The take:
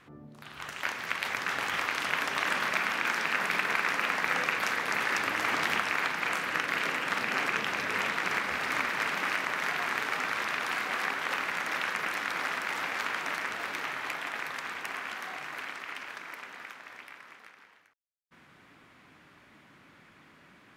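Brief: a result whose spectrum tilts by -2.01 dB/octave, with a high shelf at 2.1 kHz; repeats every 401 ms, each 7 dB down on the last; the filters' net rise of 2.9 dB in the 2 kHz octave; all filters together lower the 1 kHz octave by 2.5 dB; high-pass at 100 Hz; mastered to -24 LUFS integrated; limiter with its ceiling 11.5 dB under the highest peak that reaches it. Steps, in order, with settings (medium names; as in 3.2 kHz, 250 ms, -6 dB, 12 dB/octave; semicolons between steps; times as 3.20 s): high-pass 100 Hz; peaking EQ 1 kHz -5 dB; peaking EQ 2 kHz +8 dB; treble shelf 2.1 kHz -5.5 dB; peak limiter -22 dBFS; feedback delay 401 ms, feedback 45%, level -7 dB; trim +7 dB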